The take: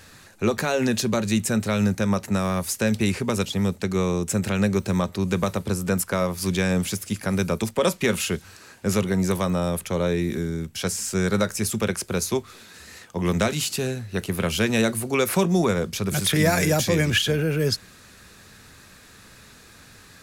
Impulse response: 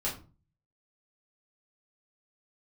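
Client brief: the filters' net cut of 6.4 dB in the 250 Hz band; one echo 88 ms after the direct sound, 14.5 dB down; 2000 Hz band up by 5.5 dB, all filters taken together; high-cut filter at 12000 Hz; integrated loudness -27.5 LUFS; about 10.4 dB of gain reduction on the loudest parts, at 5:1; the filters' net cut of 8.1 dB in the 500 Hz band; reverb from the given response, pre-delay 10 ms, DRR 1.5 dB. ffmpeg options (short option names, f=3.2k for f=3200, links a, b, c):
-filter_complex "[0:a]lowpass=12k,equalizer=f=250:t=o:g=-8,equalizer=f=500:t=o:g=-8,equalizer=f=2k:t=o:g=7.5,acompressor=threshold=-24dB:ratio=5,aecho=1:1:88:0.188,asplit=2[a][b];[1:a]atrim=start_sample=2205,adelay=10[c];[b][c]afir=irnorm=-1:irlink=0,volume=-6.5dB[d];[a][d]amix=inputs=2:normalize=0,volume=-2dB"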